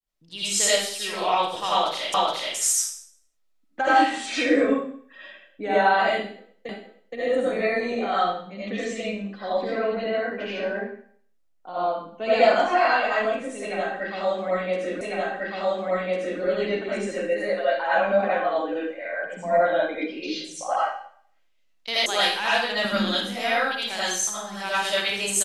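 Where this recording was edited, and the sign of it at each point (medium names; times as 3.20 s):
2.14 s: repeat of the last 0.42 s
6.69 s: repeat of the last 0.47 s
15.01 s: repeat of the last 1.4 s
22.06 s: sound stops dead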